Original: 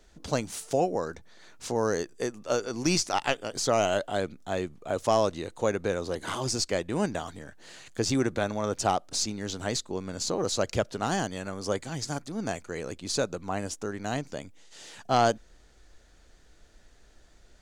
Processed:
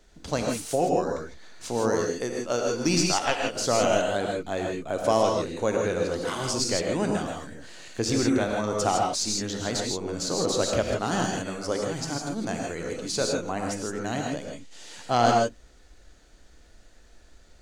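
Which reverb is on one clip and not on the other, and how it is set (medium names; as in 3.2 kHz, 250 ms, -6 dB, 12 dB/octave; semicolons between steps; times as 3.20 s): gated-style reverb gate 180 ms rising, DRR 0.5 dB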